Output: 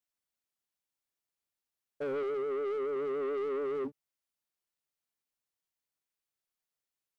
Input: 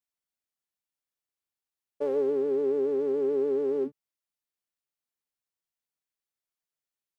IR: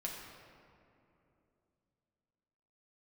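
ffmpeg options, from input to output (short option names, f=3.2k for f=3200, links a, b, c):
-filter_complex "[0:a]asettb=1/sr,asplit=3[a][b][c];[a]atrim=end=2.234[d];[b]atrim=start=2.23:end=2.96,asetpts=PTS-STARTPTS,afade=t=in:d=0.004:c=qsin,afade=t=out:st=0.726:d=0.004:c=qsin,equalizer=f=280:t=o:w=0.28:g=-7.5[e];[c]atrim=start=2.956[f];[d][e]acrossfade=d=0.004:c1=hsin:c2=qsin[g];[g][f]acrossfade=d=0.004:c1=qsin:c2=hsin,asoftclip=type=tanh:threshold=-31.5dB"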